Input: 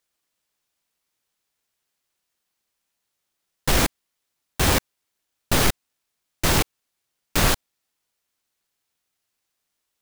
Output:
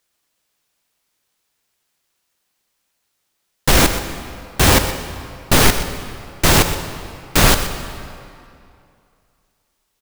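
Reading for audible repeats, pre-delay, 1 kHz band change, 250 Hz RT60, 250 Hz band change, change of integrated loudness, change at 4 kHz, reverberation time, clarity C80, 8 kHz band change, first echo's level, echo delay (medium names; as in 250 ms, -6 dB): 1, 23 ms, +8.0 dB, 2.5 s, +7.5 dB, +6.5 dB, +7.5 dB, 2.5 s, 8.5 dB, +7.5 dB, -13.0 dB, 123 ms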